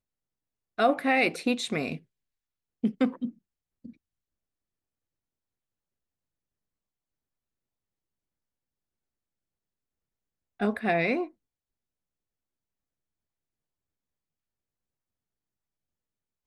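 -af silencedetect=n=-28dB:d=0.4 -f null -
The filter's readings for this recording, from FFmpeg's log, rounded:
silence_start: 0.00
silence_end: 0.79 | silence_duration: 0.79
silence_start: 1.95
silence_end: 2.84 | silence_duration: 0.89
silence_start: 3.26
silence_end: 10.61 | silence_duration: 7.36
silence_start: 11.24
silence_end: 16.47 | silence_duration: 5.23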